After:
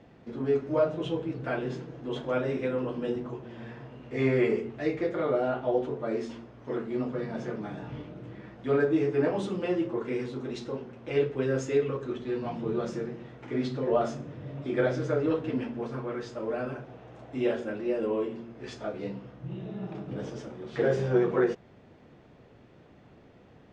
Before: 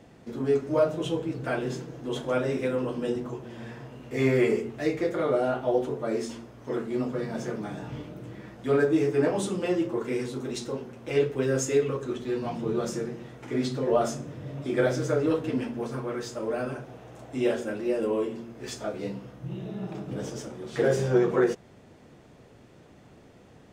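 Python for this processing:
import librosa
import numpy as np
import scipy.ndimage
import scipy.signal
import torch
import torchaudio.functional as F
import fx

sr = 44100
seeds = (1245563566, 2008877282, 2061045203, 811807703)

y = scipy.signal.sosfilt(scipy.signal.butter(2, 3800.0, 'lowpass', fs=sr, output='sos'), x)
y = F.gain(torch.from_numpy(y), -2.0).numpy()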